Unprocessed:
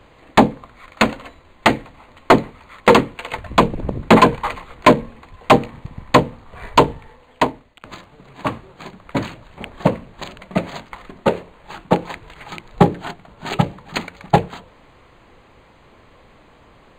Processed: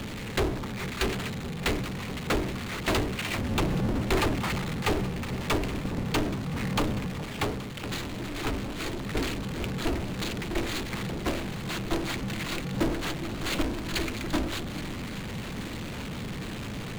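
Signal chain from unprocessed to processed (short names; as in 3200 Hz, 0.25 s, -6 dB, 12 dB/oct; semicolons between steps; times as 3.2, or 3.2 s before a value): passive tone stack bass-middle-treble 6-0-2; ring modulator 160 Hz; power-law curve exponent 0.35; echo with dull and thin repeats by turns 0.413 s, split 940 Hz, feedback 82%, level -14 dB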